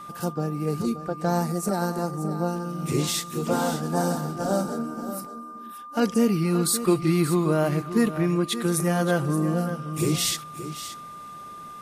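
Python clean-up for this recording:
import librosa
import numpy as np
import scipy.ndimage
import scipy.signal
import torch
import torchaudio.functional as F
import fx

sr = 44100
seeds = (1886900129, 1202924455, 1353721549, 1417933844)

y = fx.notch(x, sr, hz=1200.0, q=30.0)
y = fx.fix_echo_inverse(y, sr, delay_ms=576, level_db=-12.0)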